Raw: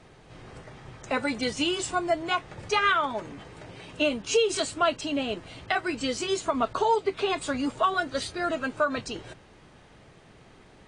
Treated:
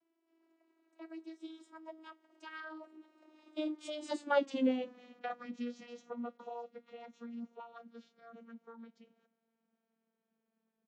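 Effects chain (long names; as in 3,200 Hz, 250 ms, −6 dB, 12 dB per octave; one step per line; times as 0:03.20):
vocoder with a gliding carrier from D4, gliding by −3 semitones
source passing by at 0:04.50, 38 m/s, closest 14 metres
comb filter 5.7 ms, depth 32%
level −3.5 dB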